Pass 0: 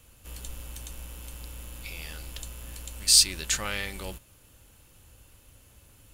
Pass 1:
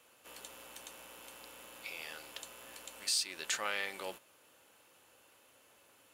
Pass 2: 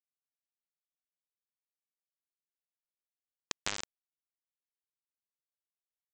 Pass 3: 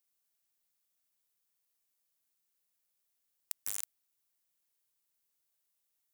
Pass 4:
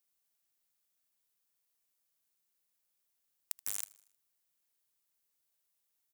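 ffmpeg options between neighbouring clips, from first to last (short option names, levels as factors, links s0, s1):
-af "highpass=470,highshelf=f=3500:g=-10,alimiter=limit=0.075:level=0:latency=1:release=311,volume=1.12"
-af "aresample=16000,acrusher=bits=3:mix=0:aa=0.000001,aresample=44100,acompressor=threshold=0.00891:ratio=6,volume=3.16"
-af "aeval=exprs='(tanh(20*val(0)+0.65)-tanh(0.65))/20':c=same,aeval=exprs='(mod(75*val(0)+1,2)-1)/75':c=same,crystalizer=i=1.5:c=0,volume=2.99"
-af "aecho=1:1:78|156|234|312:0.0794|0.0429|0.0232|0.0125"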